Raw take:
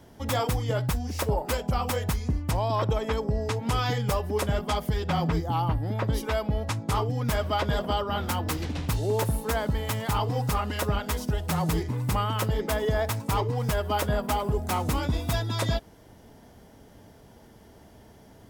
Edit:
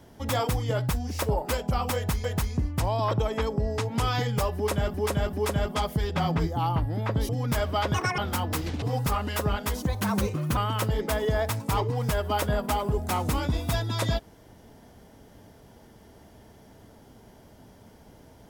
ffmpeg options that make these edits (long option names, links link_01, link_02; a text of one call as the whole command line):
ffmpeg -i in.wav -filter_complex "[0:a]asplit=10[link_01][link_02][link_03][link_04][link_05][link_06][link_07][link_08][link_09][link_10];[link_01]atrim=end=2.242[link_11];[link_02]atrim=start=1.948:end=4.652[link_12];[link_03]atrim=start=4.258:end=4.652[link_13];[link_04]atrim=start=4.258:end=6.222[link_14];[link_05]atrim=start=7.058:end=7.714[link_15];[link_06]atrim=start=7.71:end=8.14,asetpts=PTS-STARTPTS,asetrate=78498,aresample=44100,atrim=end_sample=10653,asetpts=PTS-STARTPTS[link_16];[link_07]atrim=start=8.136:end=8.782[link_17];[link_08]atrim=start=10.248:end=11.254[link_18];[link_09]atrim=start=11.25:end=12.17,asetpts=PTS-STARTPTS,asetrate=54243,aresample=44100,atrim=end_sample=32985,asetpts=PTS-STARTPTS[link_19];[link_10]atrim=start=12.166[link_20];[link_11][link_12]acrossfade=duration=0.004:curve1=hsin:curve2=hsin[link_21];[link_21][link_13]acrossfade=duration=0.004:curve1=hsin:curve2=hsin[link_22];[link_22][link_14]acrossfade=duration=0.004:curve1=hsin:curve2=hsin[link_23];[link_23][link_15]acrossfade=duration=0.004:curve1=hsin:curve2=hsin[link_24];[link_24][link_16]acrossfade=duration=0.004:curve1=hsin:curve2=hsin[link_25];[link_25][link_17]acrossfade=duration=0.004:curve1=hsin:curve2=hsin[link_26];[link_26][link_18]acrossfade=duration=0.004:curve1=hsin:curve2=hsin[link_27];[link_27][link_19]acrossfade=duration=0.004:curve1=hsin:curve2=hsin[link_28];[link_28][link_20]acrossfade=duration=0.004:curve1=hsin:curve2=hsin" out.wav